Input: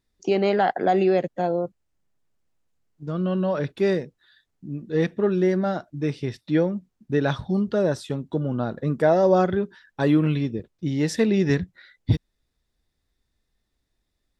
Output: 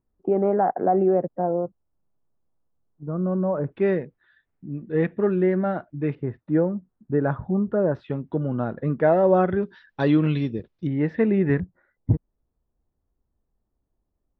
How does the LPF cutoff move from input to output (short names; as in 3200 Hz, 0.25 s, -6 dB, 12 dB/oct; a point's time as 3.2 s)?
LPF 24 dB/oct
1200 Hz
from 3.72 s 2400 Hz
from 6.15 s 1500 Hz
from 7.95 s 2500 Hz
from 9.63 s 4600 Hz
from 10.87 s 2100 Hz
from 11.6 s 1100 Hz